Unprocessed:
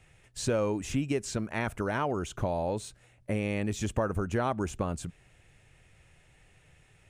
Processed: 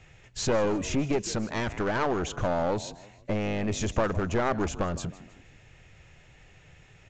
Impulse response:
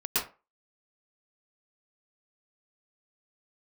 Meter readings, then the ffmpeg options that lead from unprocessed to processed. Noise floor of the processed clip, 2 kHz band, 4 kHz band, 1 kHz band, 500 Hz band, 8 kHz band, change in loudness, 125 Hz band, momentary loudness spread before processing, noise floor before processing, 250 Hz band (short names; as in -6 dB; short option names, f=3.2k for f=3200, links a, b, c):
-56 dBFS, +3.5 dB, +5.5 dB, +3.5 dB, +3.0 dB, +3.5 dB, +2.5 dB, +1.0 dB, 8 LU, -62 dBFS, +2.5 dB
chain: -filter_complex "[0:a]asplit=4[a][b][c][d];[b]adelay=157,afreqshift=48,volume=-19dB[e];[c]adelay=314,afreqshift=96,volume=-27.2dB[f];[d]adelay=471,afreqshift=144,volume=-35.4dB[g];[a][e][f][g]amix=inputs=4:normalize=0,aeval=exprs='clip(val(0),-1,0.02)':c=same,volume=6dB" -ar 16000 -c:a sbc -b:a 192k